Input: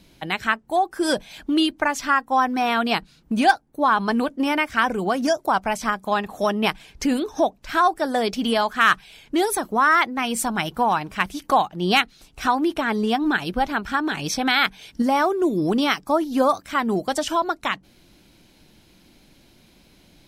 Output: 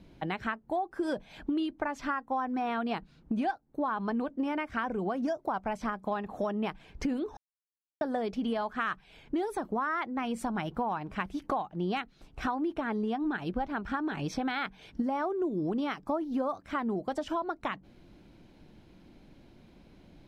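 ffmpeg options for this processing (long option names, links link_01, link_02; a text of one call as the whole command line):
ffmpeg -i in.wav -filter_complex "[0:a]asplit=3[link_01][link_02][link_03];[link_01]atrim=end=7.37,asetpts=PTS-STARTPTS,afade=type=out:start_time=7.366:duration=0.004:curve=hsin[link_04];[link_02]atrim=start=7.37:end=8.01,asetpts=PTS-STARTPTS,volume=0[link_05];[link_03]atrim=start=8.01,asetpts=PTS-STARTPTS,afade=type=in:duration=0.004:curve=hsin[link_06];[link_04][link_05][link_06]concat=n=3:v=0:a=1,lowpass=frequency=1000:poles=1,acompressor=threshold=-30dB:ratio=4" out.wav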